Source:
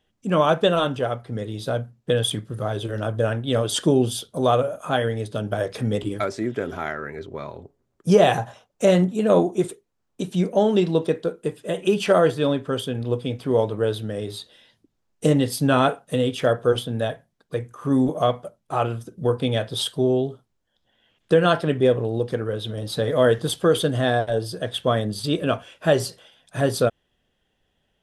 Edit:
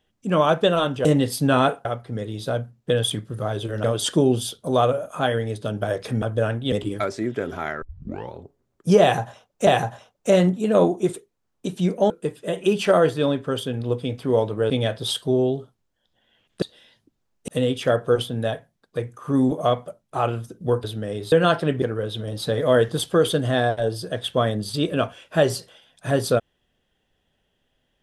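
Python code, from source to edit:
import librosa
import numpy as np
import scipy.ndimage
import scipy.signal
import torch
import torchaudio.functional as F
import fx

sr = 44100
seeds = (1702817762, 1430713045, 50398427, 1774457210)

y = fx.edit(x, sr, fx.move(start_s=3.04, length_s=0.5, to_s=5.92),
    fx.tape_start(start_s=7.02, length_s=0.52),
    fx.repeat(start_s=8.22, length_s=0.65, count=2),
    fx.cut(start_s=10.65, length_s=0.66),
    fx.swap(start_s=13.91, length_s=0.48, other_s=19.41, other_length_s=1.92),
    fx.move(start_s=15.25, length_s=0.8, to_s=1.05),
    fx.cut(start_s=21.83, length_s=0.49), tone=tone)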